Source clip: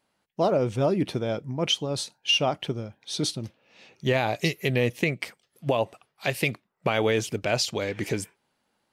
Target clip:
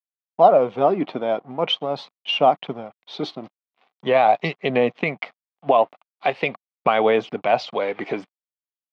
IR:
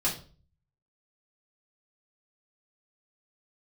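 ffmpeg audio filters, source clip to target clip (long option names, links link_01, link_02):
-af "aeval=exprs='sgn(val(0))*max(abs(val(0))-0.00398,0)':channel_layout=same,highpass=frequency=190:width=0.5412,highpass=frequency=190:width=1.3066,equalizer=frequency=210:width_type=q:width=4:gain=-3,equalizer=frequency=340:width_type=q:width=4:gain=-6,equalizer=frequency=740:width_type=q:width=4:gain=9,equalizer=frequency=1100:width_type=q:width=4:gain=6,equalizer=frequency=1700:width_type=q:width=4:gain=-5,equalizer=frequency=2700:width_type=q:width=4:gain=-4,lowpass=frequency=3200:width=0.5412,lowpass=frequency=3200:width=1.3066,aphaser=in_gain=1:out_gain=1:delay=3.5:decay=0.27:speed=0.42:type=triangular,volume=5dB"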